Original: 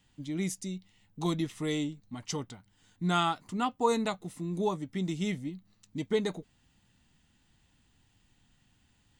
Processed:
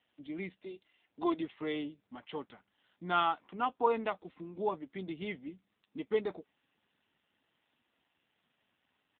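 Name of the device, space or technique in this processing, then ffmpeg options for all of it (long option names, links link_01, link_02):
telephone: -filter_complex "[0:a]asplit=3[link_01][link_02][link_03];[link_01]afade=type=out:start_time=0.58:duration=0.02[link_04];[link_02]aecho=1:1:2.9:0.84,afade=type=in:start_time=0.58:duration=0.02,afade=type=out:start_time=1.37:duration=0.02[link_05];[link_03]afade=type=in:start_time=1.37:duration=0.02[link_06];[link_04][link_05][link_06]amix=inputs=3:normalize=0,highpass=360,lowpass=3600" -ar 8000 -c:a libopencore_amrnb -b:a 7400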